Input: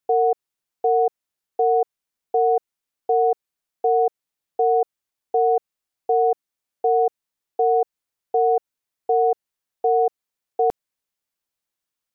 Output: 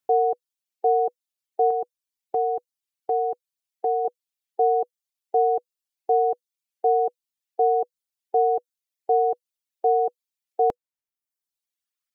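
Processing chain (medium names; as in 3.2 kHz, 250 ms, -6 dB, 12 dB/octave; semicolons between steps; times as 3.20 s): band-stop 490 Hz, Q 16; reverb removal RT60 1.5 s; 1.70–4.05 s: dynamic bell 570 Hz, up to -6 dB, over -33 dBFS, Q 1.7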